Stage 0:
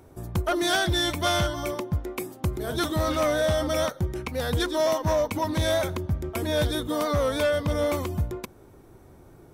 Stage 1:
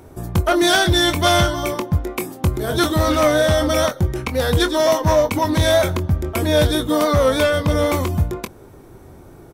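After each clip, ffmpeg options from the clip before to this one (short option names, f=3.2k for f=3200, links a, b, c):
-filter_complex "[0:a]asplit=2[a][b];[b]adelay=23,volume=-10dB[c];[a][c]amix=inputs=2:normalize=0,volume=8dB"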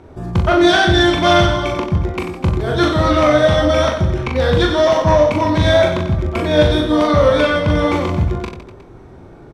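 -filter_complex "[0:a]lowpass=4k,asplit=2[a][b];[b]aecho=0:1:40|92|159.6|247.5|361.7:0.631|0.398|0.251|0.158|0.1[c];[a][c]amix=inputs=2:normalize=0,volume=1dB"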